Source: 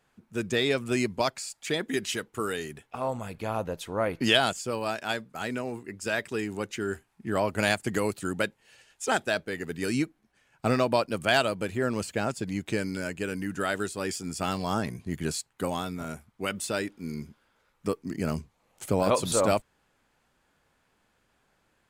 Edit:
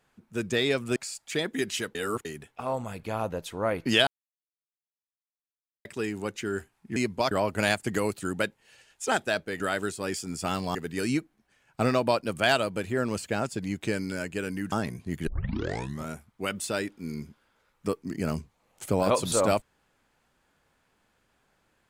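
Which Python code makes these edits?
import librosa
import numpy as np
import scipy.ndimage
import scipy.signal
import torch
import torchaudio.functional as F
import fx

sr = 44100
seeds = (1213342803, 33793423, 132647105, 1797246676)

y = fx.edit(x, sr, fx.move(start_s=0.96, length_s=0.35, to_s=7.31),
    fx.reverse_span(start_s=2.3, length_s=0.3),
    fx.silence(start_s=4.42, length_s=1.78),
    fx.move(start_s=13.57, length_s=1.15, to_s=9.6),
    fx.tape_start(start_s=15.27, length_s=0.81), tone=tone)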